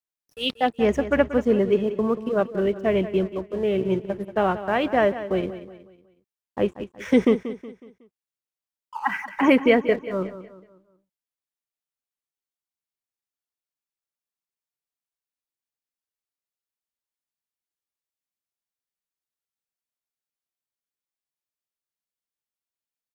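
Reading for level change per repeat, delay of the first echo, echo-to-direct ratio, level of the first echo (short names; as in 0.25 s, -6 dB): -8.0 dB, 0.184 s, -12.0 dB, -13.0 dB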